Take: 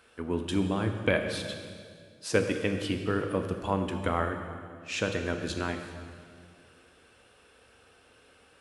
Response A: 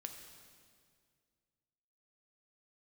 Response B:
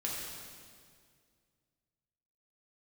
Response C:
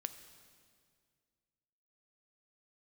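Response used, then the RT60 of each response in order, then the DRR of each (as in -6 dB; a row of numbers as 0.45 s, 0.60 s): A; 2.1 s, 2.0 s, 2.0 s; 4.5 dB, -4.5 dB, 10.0 dB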